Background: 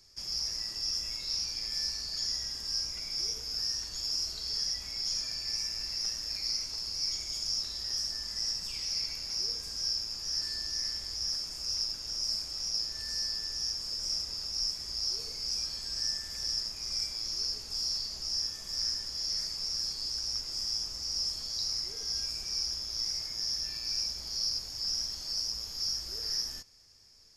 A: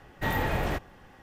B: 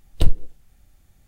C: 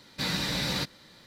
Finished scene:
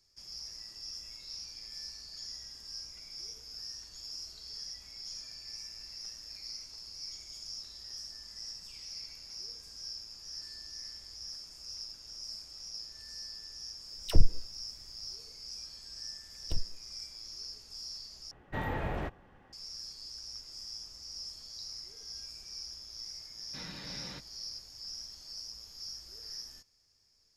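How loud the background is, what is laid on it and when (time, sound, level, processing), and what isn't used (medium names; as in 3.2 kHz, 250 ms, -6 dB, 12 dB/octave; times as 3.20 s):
background -10.5 dB
13.88 s: add B -5.5 dB + phase dispersion lows, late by 60 ms, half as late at 920 Hz
16.30 s: add B -17.5 dB
18.31 s: replace with A -6 dB + low-pass 2.1 kHz 6 dB/octave
23.35 s: add C -15 dB + low-pass 3.4 kHz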